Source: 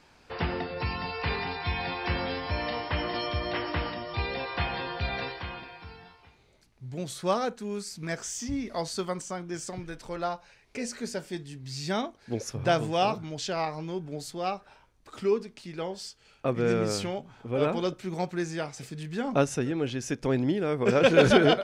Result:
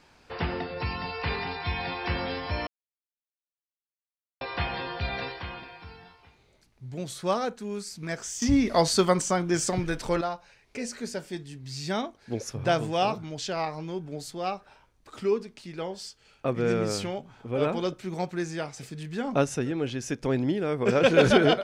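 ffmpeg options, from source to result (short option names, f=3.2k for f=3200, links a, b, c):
-filter_complex "[0:a]asplit=5[a][b][c][d][e];[a]atrim=end=2.67,asetpts=PTS-STARTPTS,afade=t=out:st=2.666:d=0.004:c=hsin[f];[b]atrim=start=2.67:end=4.41,asetpts=PTS-STARTPTS,volume=0[g];[c]atrim=start=4.41:end=8.422,asetpts=PTS-STARTPTS,afade=t=in:d=0.004:c=hsin[h];[d]atrim=start=8.418:end=10.212,asetpts=PTS-STARTPTS,volume=10dB[i];[e]atrim=start=10.208[j];[f][g][h]concat=n=3:v=0:a=1[k];[k][i]acrossfade=d=0.004:c1=hsin:c2=hsin[l];[l][j]acrossfade=d=0.004:c1=hsin:c2=hsin"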